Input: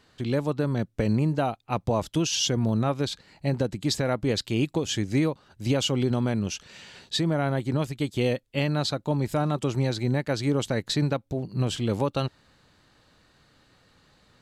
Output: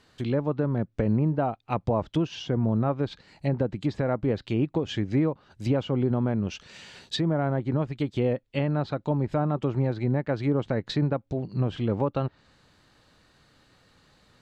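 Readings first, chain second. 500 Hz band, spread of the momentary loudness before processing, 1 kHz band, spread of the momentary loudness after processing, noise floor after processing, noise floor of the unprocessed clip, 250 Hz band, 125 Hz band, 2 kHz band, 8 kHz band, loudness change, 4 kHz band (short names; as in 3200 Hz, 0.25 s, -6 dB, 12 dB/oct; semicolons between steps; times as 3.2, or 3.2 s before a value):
0.0 dB, 6 LU, -0.5 dB, 5 LU, -62 dBFS, -62 dBFS, 0.0 dB, 0.0 dB, -4.5 dB, under -15 dB, -0.5 dB, -8.5 dB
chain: treble ducked by the level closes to 1400 Hz, closed at -21.5 dBFS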